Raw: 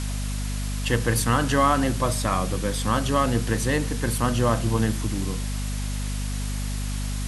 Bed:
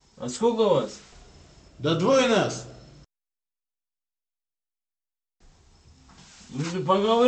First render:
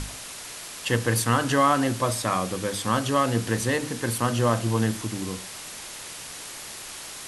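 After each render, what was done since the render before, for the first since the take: notches 50/100/150/200/250/300 Hz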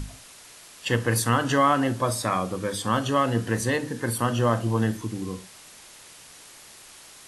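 noise print and reduce 9 dB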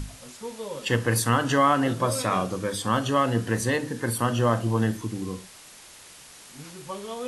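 add bed -14.5 dB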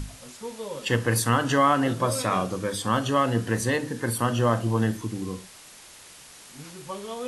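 nothing audible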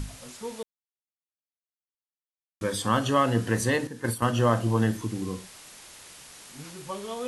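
0.63–2.61 mute; 3.87–4.5 gate -28 dBFS, range -8 dB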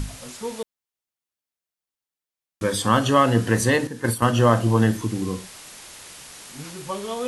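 gain +5.5 dB

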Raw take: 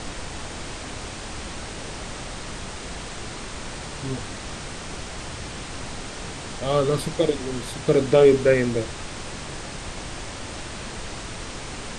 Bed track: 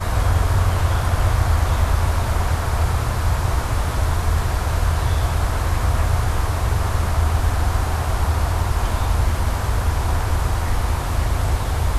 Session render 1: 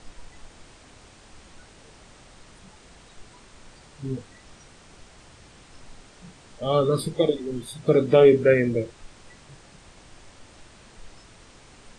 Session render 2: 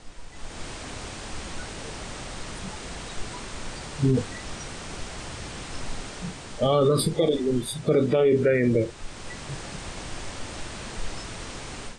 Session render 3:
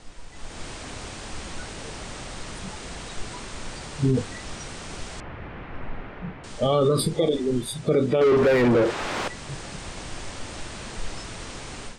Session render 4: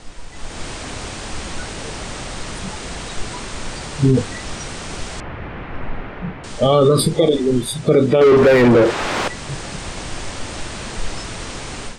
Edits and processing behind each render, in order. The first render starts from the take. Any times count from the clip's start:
noise print and reduce 16 dB
AGC gain up to 13.5 dB; limiter -12.5 dBFS, peak gain reduction 11.5 dB
5.2–6.44 LPF 2300 Hz 24 dB/oct; 8.21–9.28 overdrive pedal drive 29 dB, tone 1300 Hz, clips at -12 dBFS
gain +7.5 dB

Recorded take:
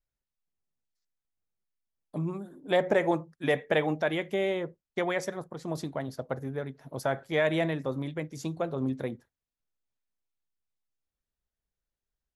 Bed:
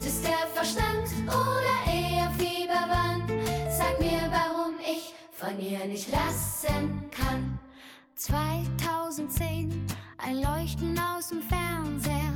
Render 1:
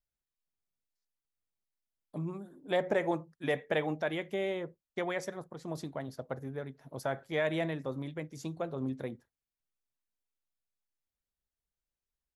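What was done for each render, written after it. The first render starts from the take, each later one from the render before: gain -5 dB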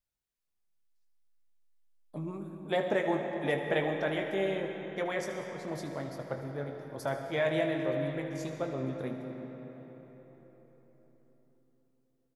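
early reflections 21 ms -8.5 dB, 77 ms -12.5 dB; digital reverb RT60 4.6 s, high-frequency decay 0.6×, pre-delay 75 ms, DRR 4.5 dB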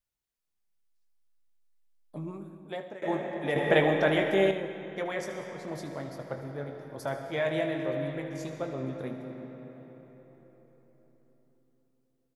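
2.27–3.02 fade out, to -20 dB; 3.56–4.51 gain +7 dB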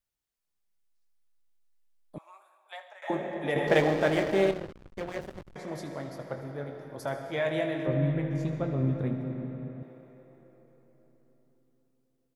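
2.18–3.1 steep high-pass 700 Hz; 3.67–5.56 backlash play -27.5 dBFS; 7.87–9.83 tone controls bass +13 dB, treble -9 dB

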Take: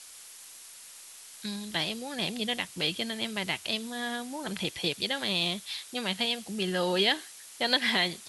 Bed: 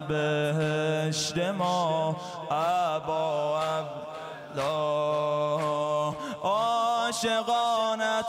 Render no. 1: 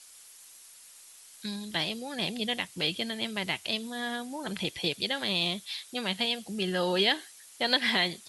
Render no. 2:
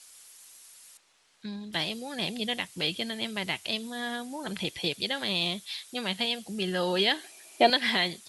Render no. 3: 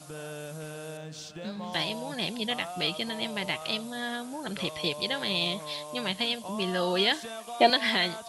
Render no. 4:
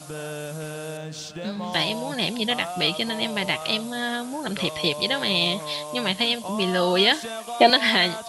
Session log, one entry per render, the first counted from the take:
denoiser 6 dB, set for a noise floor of -49 dBFS
0.97–1.73 tape spacing loss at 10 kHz 22 dB; 7.24–7.7 small resonant body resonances 360/640/2400 Hz, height 17 dB, ringing for 25 ms
add bed -13.5 dB
gain +6.5 dB; limiter -2 dBFS, peak gain reduction 2 dB

